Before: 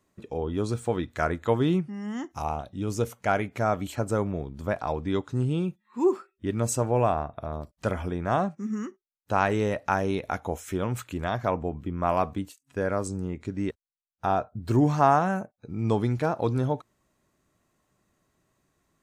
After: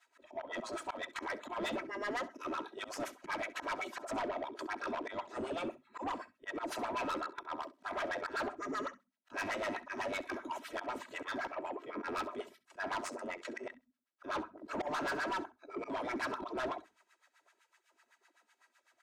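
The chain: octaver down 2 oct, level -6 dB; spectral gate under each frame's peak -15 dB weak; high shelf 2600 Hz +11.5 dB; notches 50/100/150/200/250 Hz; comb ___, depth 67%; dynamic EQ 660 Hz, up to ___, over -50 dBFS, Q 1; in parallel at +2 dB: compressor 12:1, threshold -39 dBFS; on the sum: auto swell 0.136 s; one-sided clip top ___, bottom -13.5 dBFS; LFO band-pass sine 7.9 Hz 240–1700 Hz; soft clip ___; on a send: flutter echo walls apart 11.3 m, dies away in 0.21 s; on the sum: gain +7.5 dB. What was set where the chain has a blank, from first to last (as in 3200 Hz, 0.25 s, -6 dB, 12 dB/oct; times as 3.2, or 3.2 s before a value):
3.1 ms, +7 dB, -30.5 dBFS, -40 dBFS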